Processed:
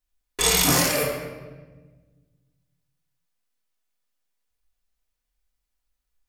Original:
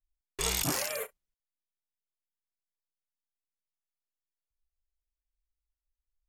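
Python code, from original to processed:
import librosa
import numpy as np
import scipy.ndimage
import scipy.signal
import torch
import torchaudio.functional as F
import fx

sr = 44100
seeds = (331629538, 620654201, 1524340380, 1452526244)

y = fx.low_shelf(x, sr, hz=84.0, db=-10.5)
y = fx.room_shoebox(y, sr, seeds[0], volume_m3=1100.0, walls='mixed', distance_m=1.9)
y = y * librosa.db_to_amplitude(8.5)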